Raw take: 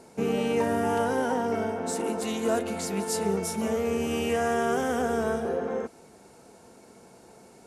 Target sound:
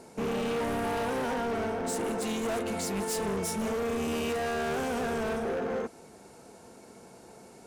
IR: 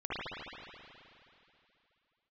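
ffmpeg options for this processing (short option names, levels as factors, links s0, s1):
-af "volume=29.9,asoftclip=hard,volume=0.0335,volume=1.12"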